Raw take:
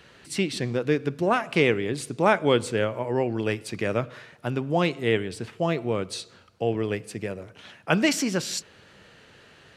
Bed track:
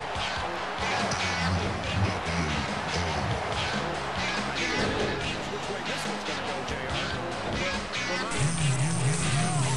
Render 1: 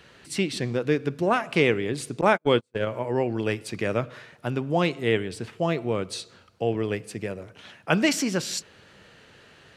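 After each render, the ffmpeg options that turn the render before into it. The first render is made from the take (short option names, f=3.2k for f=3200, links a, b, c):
-filter_complex "[0:a]asettb=1/sr,asplit=3[a][b][c];[a]atrim=end=2.214[d];[b]atrim=start=2.21:end=2.87,asetpts=PTS-STARTPTS,afade=t=in:d=0.004:c=qsin,afade=t=out:st=0.656:d=0.004:c=qsin,agate=range=-43dB:threshold=-24dB:ratio=16:release=100:detection=peak[e];[c]atrim=start=2.866[f];[d][e]acrossfade=d=0.004:c1=hsin:c2=qsin[g];[g][f]acrossfade=d=0.004:c1=qsin:c2=hsin"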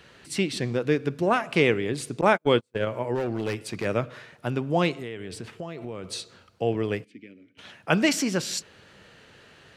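-filter_complex "[0:a]asplit=3[a][b][c];[a]afade=t=out:st=3.14:d=0.02[d];[b]asoftclip=type=hard:threshold=-23dB,afade=t=in:st=3.14:d=0.02,afade=t=out:st=3.84:d=0.02[e];[c]afade=t=in:st=3.84:d=0.02[f];[d][e][f]amix=inputs=3:normalize=0,asettb=1/sr,asplit=3[g][h][i];[g]atrim=end=4.984[j];[h]atrim=start=4.98:end=6.04,asetpts=PTS-STARTPTS,afade=t=in:d=0.004:c=qsin,afade=t=out:st=1.056:d=0.004:c=qsin,acompressor=threshold=-31dB:ratio=8:attack=3.2:release=140:knee=1:detection=peak[k];[i]atrim=start=6.036[l];[j][k]acrossfade=d=0.004:c1=hsin:c2=qsin[m];[m][l]acrossfade=d=0.004:c1=qsin:c2=hsin,asplit=3[n][o][p];[n]afade=t=out:st=7.03:d=0.02[q];[o]asplit=3[r][s][t];[r]bandpass=f=270:t=q:w=8,volume=0dB[u];[s]bandpass=f=2.29k:t=q:w=8,volume=-6dB[v];[t]bandpass=f=3.01k:t=q:w=8,volume=-9dB[w];[u][v][w]amix=inputs=3:normalize=0,afade=t=in:st=7.03:d=0.02,afade=t=out:st=7.57:d=0.02[x];[p]afade=t=in:st=7.57:d=0.02[y];[q][x][y]amix=inputs=3:normalize=0"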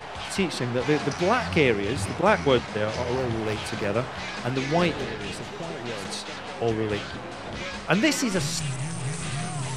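-filter_complex "[1:a]volume=-4.5dB[a];[0:a][a]amix=inputs=2:normalize=0"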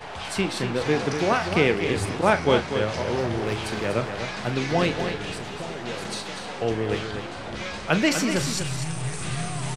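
-filter_complex "[0:a]asplit=2[a][b];[b]adelay=38,volume=-12dB[c];[a][c]amix=inputs=2:normalize=0,aecho=1:1:245:0.398"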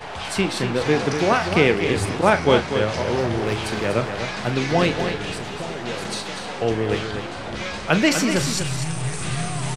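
-af "volume=3.5dB,alimiter=limit=-2dB:level=0:latency=1"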